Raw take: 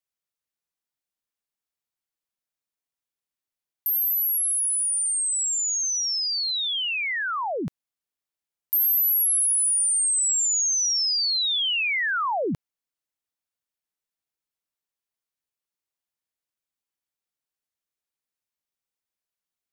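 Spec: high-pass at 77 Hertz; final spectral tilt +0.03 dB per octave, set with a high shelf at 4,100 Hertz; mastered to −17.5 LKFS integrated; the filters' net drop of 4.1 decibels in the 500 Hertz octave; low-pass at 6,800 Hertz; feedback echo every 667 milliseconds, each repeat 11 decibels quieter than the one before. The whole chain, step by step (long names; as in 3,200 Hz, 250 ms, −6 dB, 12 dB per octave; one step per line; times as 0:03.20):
high-pass filter 77 Hz
low-pass filter 6,800 Hz
parametric band 500 Hz −5.5 dB
high-shelf EQ 4,100 Hz +7 dB
repeating echo 667 ms, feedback 28%, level −11 dB
level +3 dB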